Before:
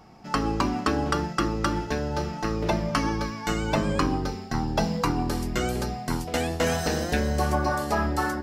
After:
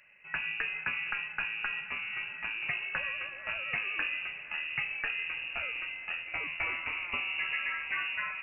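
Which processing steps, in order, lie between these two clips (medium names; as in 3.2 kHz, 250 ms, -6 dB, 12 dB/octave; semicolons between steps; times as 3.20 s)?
bass shelf 84 Hz -6 dB; on a send: echo that smears into a reverb 571 ms, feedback 62%, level -15 dB; on the sum: frequency inversion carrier 2.8 kHz; trim -9 dB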